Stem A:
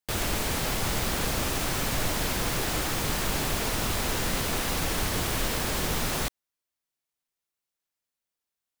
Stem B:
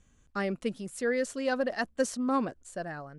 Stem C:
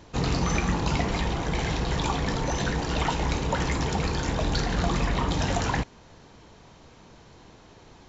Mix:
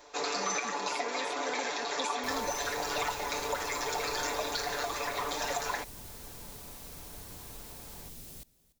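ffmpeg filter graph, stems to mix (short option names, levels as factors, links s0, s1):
-filter_complex "[0:a]equalizer=f=1300:t=o:w=2.4:g=-13.5,adelay=2150,volume=0.119,asplit=2[s0][s1];[s1]volume=0.0841[s2];[1:a]volume=0.251[s3];[2:a]highpass=f=420:w=0.5412,highpass=f=420:w=1.3066,bandreject=f=3000:w=7.4,aecho=1:1:6.9:0.93,volume=0.708[s4];[s3][s4]amix=inputs=2:normalize=0,alimiter=limit=0.0794:level=0:latency=1:release=385,volume=1[s5];[s2]aecho=0:1:291|582|873|1164|1455:1|0.33|0.109|0.0359|0.0119[s6];[s0][s5][s6]amix=inputs=3:normalize=0,highshelf=f=8000:g=6.5"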